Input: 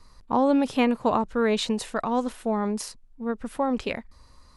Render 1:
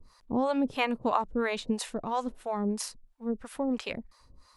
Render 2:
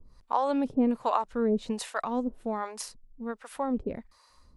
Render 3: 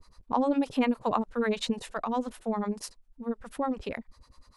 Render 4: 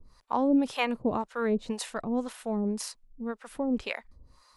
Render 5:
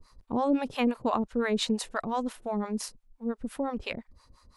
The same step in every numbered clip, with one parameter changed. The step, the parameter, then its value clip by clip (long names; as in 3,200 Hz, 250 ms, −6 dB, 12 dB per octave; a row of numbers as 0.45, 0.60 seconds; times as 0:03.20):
two-band tremolo in antiphase, speed: 3, 1.3, 10, 1.9, 5.8 Hertz